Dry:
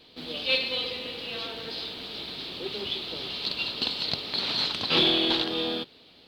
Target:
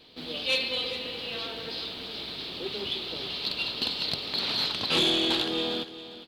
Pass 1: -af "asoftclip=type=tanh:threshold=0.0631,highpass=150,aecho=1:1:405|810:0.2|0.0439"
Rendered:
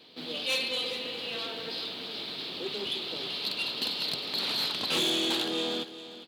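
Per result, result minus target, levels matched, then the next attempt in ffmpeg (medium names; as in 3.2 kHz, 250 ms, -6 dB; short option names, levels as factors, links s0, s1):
saturation: distortion +8 dB; 125 Hz band -3.5 dB
-af "asoftclip=type=tanh:threshold=0.141,highpass=150,aecho=1:1:405|810:0.2|0.0439"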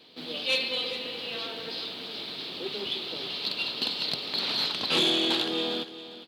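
125 Hz band -3.5 dB
-af "asoftclip=type=tanh:threshold=0.141,aecho=1:1:405|810:0.2|0.0439"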